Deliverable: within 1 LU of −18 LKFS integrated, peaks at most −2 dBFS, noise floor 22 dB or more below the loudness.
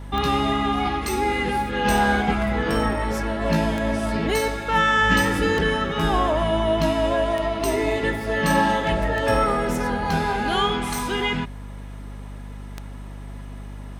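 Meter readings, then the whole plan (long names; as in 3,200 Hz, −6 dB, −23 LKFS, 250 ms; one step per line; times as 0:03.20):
number of clicks 8; mains hum 50 Hz; hum harmonics up to 250 Hz; level of the hum −33 dBFS; integrated loudness −22.0 LKFS; sample peak −6.5 dBFS; target loudness −18.0 LKFS
→ click removal
mains-hum notches 50/100/150/200/250 Hz
level +4 dB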